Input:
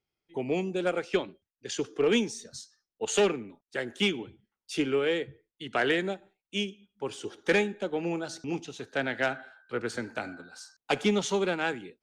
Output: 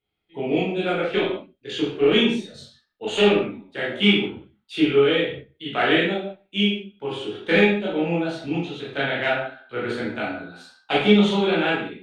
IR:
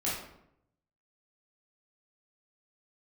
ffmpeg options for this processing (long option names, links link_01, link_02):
-filter_complex "[0:a]highshelf=frequency=4500:width_type=q:width=3:gain=-8[link_01];[1:a]atrim=start_sample=2205,afade=type=out:start_time=0.26:duration=0.01,atrim=end_sample=11907[link_02];[link_01][link_02]afir=irnorm=-1:irlink=0"